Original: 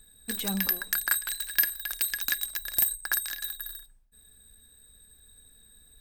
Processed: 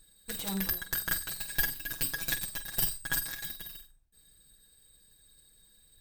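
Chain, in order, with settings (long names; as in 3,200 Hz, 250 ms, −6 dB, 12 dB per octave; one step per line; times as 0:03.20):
lower of the sound and its delayed copy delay 6.1 ms
0:01.35–0:03.49: comb filter 7.3 ms, depth 56%
flutter between parallel walls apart 8 metres, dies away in 0.24 s
level −3.5 dB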